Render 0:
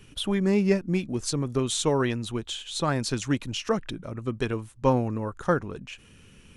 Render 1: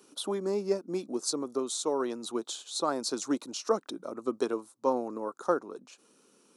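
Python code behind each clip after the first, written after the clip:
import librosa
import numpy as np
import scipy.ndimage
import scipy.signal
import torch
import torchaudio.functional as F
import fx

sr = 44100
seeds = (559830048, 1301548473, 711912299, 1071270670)

y = scipy.signal.sosfilt(scipy.signal.butter(4, 280.0, 'highpass', fs=sr, output='sos'), x)
y = fx.band_shelf(y, sr, hz=2300.0, db=-14.0, octaves=1.2)
y = fx.rider(y, sr, range_db=4, speed_s=0.5)
y = y * 10.0 ** (-2.0 / 20.0)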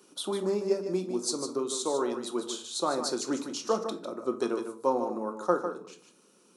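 y = x + 10.0 ** (-8.5 / 20.0) * np.pad(x, (int(151 * sr / 1000.0), 0))[:len(x)]
y = fx.room_shoebox(y, sr, seeds[0], volume_m3=420.0, walls='furnished', distance_m=0.93)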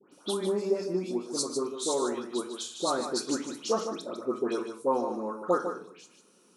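y = fx.dispersion(x, sr, late='highs', ms=125.0, hz=2000.0)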